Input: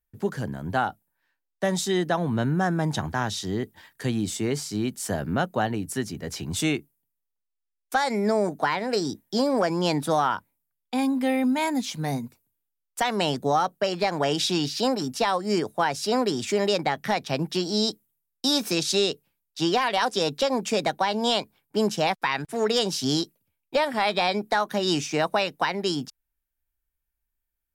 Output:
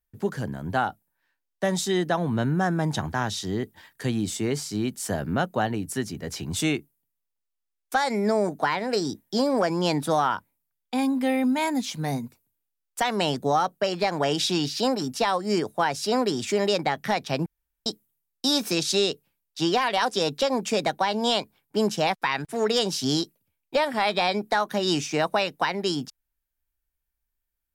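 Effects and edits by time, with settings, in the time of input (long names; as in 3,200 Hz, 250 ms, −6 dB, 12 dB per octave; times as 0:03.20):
0:17.46–0:17.86: fill with room tone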